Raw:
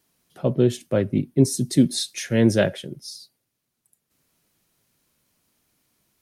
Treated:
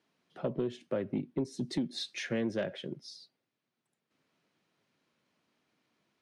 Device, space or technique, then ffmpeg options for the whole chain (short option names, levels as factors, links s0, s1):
AM radio: -af "highpass=180,lowpass=3400,acompressor=threshold=0.0562:ratio=8,asoftclip=type=tanh:threshold=0.106,volume=0.75"